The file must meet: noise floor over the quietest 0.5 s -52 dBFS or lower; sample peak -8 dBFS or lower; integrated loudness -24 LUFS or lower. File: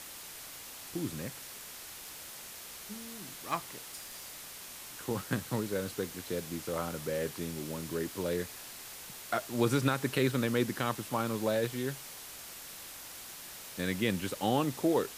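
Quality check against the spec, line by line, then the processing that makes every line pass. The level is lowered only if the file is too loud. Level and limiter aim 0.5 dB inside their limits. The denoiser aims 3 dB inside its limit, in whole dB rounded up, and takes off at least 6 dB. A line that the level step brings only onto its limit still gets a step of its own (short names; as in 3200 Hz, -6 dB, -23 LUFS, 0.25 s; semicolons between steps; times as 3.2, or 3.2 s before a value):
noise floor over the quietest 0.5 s -47 dBFS: fail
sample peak -14.5 dBFS: OK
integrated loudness -35.5 LUFS: OK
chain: denoiser 8 dB, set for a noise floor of -47 dBFS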